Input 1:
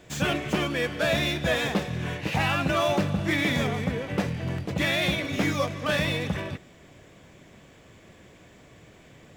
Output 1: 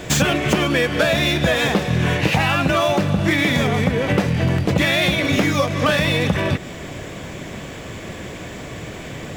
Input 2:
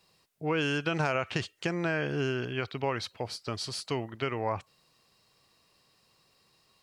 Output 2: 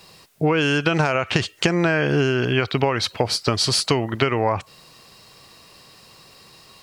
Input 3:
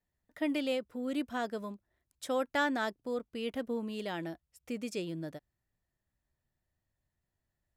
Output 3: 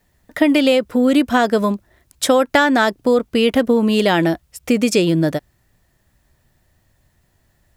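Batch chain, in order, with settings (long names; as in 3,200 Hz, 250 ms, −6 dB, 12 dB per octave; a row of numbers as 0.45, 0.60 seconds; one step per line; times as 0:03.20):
downward compressor 10 to 1, threshold −34 dBFS
normalise the peak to −2 dBFS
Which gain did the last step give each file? +19.5, +18.5, +24.0 decibels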